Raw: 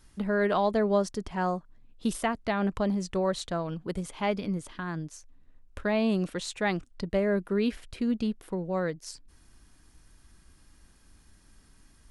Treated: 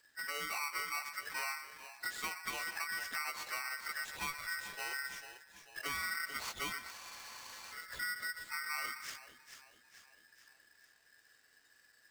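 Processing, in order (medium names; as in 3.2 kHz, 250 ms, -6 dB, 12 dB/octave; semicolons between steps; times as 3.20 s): frequency axis rescaled in octaves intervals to 86%; spectral noise reduction 7 dB; compression 5:1, threshold -37 dBFS, peak gain reduction 13.5 dB; two-band feedback delay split 740 Hz, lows 124 ms, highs 442 ms, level -9 dB; spectral freeze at 6.95 s, 0.76 s; polarity switched at an audio rate 1.7 kHz; trim -1 dB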